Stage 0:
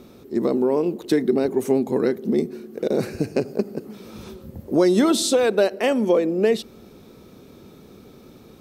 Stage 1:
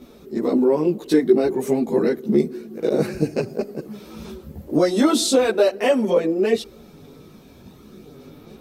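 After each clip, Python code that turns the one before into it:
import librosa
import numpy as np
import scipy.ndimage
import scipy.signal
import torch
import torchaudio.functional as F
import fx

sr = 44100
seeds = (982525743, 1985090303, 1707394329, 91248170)

y = fx.chorus_voices(x, sr, voices=4, hz=0.44, base_ms=16, depth_ms=3.7, mix_pct=60)
y = F.gain(torch.from_numpy(y), 4.0).numpy()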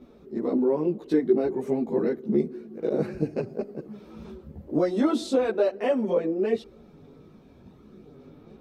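y = fx.lowpass(x, sr, hz=1500.0, slope=6)
y = F.gain(torch.from_numpy(y), -5.5).numpy()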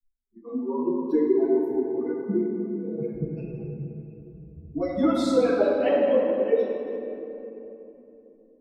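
y = fx.bin_expand(x, sr, power=3.0)
y = fx.echo_wet_bandpass(y, sr, ms=226, feedback_pct=47, hz=770.0, wet_db=-12.5)
y = fx.room_shoebox(y, sr, seeds[0], volume_m3=150.0, walls='hard', distance_m=0.62)
y = F.gain(torch.from_numpy(y), 2.5).numpy()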